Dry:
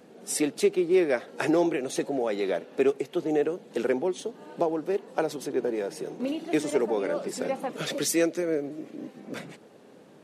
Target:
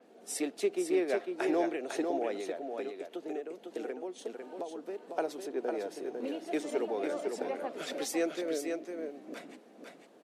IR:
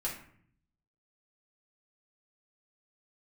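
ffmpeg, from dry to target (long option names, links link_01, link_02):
-filter_complex "[0:a]highpass=frequency=230:width=0.5412,highpass=frequency=230:width=1.3066,equalizer=frequency=690:width=7.7:gain=6.5,asettb=1/sr,asplit=3[link_01][link_02][link_03];[link_01]atrim=end=2.384[link_04];[link_02]atrim=start=2.38:end=5.03,asetpts=PTS-STARTPTS,afade=type=in:duration=0.004:curve=qsin,afade=type=out:start_time=2.646:duration=0.004:curve=qsin,acompressor=threshold=-29dB:ratio=6[link_05];[link_03]atrim=start=5.026[link_06];[link_04][link_05]acrossfade=duration=0.004:curve1=hsin:curve2=qsin[link_07];[link_07][link_06]acrossfade=duration=0.004:curve1=qsin:curve2=hsin,aecho=1:1:501:0.562,adynamicequalizer=threshold=0.00447:dfrequency=5000:dqfactor=0.7:tfrequency=5000:tqfactor=0.7:attack=5:release=100:ratio=0.375:range=2.5:mode=cutabove:tftype=highshelf,volume=-7.5dB"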